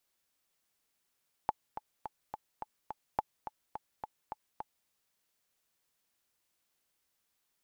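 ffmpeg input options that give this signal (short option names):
-f lavfi -i "aevalsrc='pow(10,(-15.5-10.5*gte(mod(t,6*60/212),60/212))/20)*sin(2*PI*858*mod(t,60/212))*exp(-6.91*mod(t,60/212)/0.03)':d=3.39:s=44100"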